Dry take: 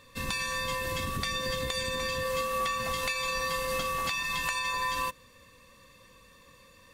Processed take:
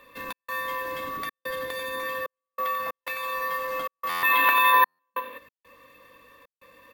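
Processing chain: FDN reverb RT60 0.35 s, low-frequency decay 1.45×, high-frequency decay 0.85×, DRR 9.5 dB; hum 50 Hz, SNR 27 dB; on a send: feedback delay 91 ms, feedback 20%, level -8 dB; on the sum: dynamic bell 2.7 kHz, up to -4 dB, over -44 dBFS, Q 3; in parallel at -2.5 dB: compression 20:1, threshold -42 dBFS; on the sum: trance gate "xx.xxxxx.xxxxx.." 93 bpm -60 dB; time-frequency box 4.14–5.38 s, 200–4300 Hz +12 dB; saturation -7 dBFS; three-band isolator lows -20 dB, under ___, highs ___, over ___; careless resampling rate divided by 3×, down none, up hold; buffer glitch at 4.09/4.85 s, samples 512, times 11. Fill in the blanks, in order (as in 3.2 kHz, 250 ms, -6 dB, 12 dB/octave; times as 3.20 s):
280 Hz, -15 dB, 3.1 kHz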